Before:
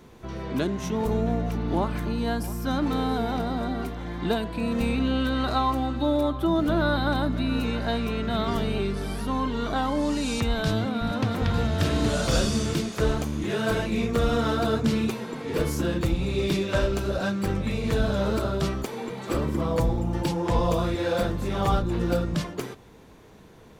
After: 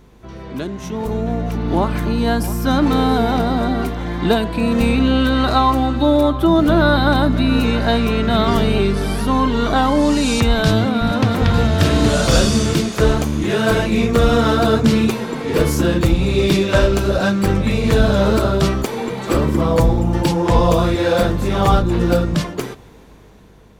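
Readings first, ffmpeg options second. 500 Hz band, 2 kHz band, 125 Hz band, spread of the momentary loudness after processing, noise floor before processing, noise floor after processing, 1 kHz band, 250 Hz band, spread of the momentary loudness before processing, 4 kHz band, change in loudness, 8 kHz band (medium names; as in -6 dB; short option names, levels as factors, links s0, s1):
+9.5 dB, +10.0 dB, +9.5 dB, 7 LU, -49 dBFS, -42 dBFS, +10.0 dB, +9.5 dB, 5 LU, +10.0 dB, +10.0 dB, +9.5 dB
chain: -af "dynaudnorm=f=630:g=5:m=4.47,aeval=exprs='val(0)+0.00398*(sin(2*PI*50*n/s)+sin(2*PI*2*50*n/s)/2+sin(2*PI*3*50*n/s)/3+sin(2*PI*4*50*n/s)/4+sin(2*PI*5*50*n/s)/5)':c=same"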